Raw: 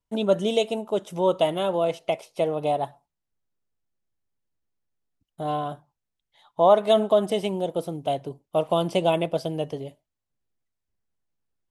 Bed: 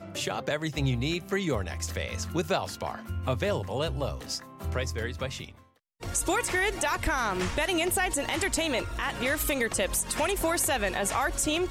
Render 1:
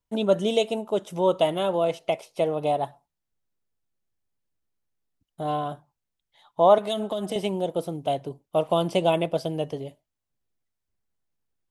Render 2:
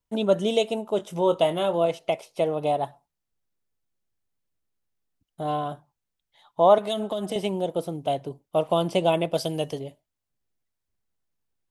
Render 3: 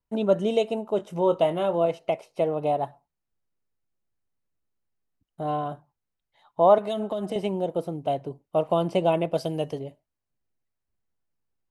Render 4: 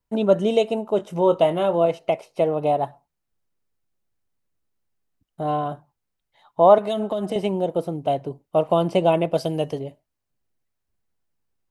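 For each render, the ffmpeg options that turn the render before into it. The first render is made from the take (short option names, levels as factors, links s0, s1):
-filter_complex "[0:a]asettb=1/sr,asplit=3[s0][s1][s2];[s0]atrim=end=6.784[s3];[s1]atrim=start=6.78:end=7.36,asetpts=PTS-STARTPTS,afade=t=in:d=0.004:c=qsin,afade=t=out:st=0.576:d=0.004:c=qsin,acrossover=split=170|3000[s4][s5][s6];[s5]acompressor=threshold=0.0501:ratio=6:attack=3.2:release=140:knee=2.83:detection=peak[s7];[s4][s7][s6]amix=inputs=3:normalize=0[s8];[s2]atrim=start=7.356[s9];[s3][s8]acrossfade=d=0.004:c1=hsin:c2=qsin[s10];[s10][s9]acrossfade=d=0.004:c1=qsin:c2=hsin"
-filter_complex "[0:a]asettb=1/sr,asplit=3[s0][s1][s2];[s0]atrim=end=0.964[s3];[s1]atrim=start=0.96:end=1.86,asetpts=PTS-STARTPTS,afade=t=in:d=0.004:c=qsin,afade=t=out:st=0.896:d=0.004:c=qsin,asplit=2[s4][s5];[s5]adelay=24,volume=0.299[s6];[s4][s6]amix=inputs=2:normalize=0,atrim=end_sample=39690[s7];[s2]atrim=start=1.856[s8];[s3][s7]acrossfade=d=0.004:c1=hsin:c2=qsin[s9];[s9][s8]acrossfade=d=0.004:c1=qsin:c2=hsin,asettb=1/sr,asplit=3[s10][s11][s12];[s10]atrim=end=9.334[s13];[s11]atrim=start=9.33:end=9.79,asetpts=PTS-STARTPTS,afade=t=in:d=0.004:c=qsin,afade=t=out:st=0.456:d=0.004:c=qsin,highshelf=f=3100:g=11[s14];[s12]atrim=start=9.786[s15];[s13][s14]acrossfade=d=0.004:c1=hsin:c2=qsin[s16];[s16][s15]acrossfade=d=0.004:c1=qsin:c2=hsin"
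-af "highshelf=f=3200:g=-10,bandreject=f=3400:w=11"
-af "volume=1.58"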